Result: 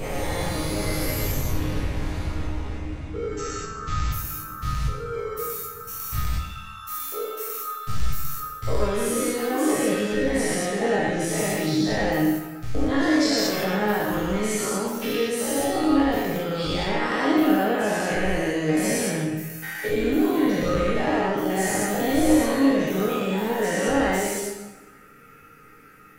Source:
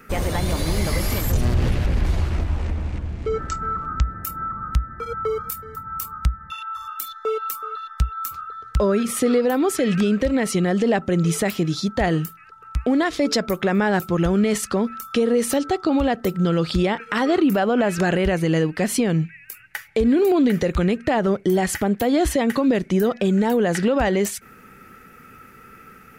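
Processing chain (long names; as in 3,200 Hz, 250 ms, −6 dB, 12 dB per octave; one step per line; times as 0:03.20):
every bin's largest magnitude spread in time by 240 ms
resonators tuned to a chord G#2 sus4, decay 0.23 s
dense smooth reverb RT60 1.2 s, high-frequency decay 0.8×, DRR 1.5 dB
level +1 dB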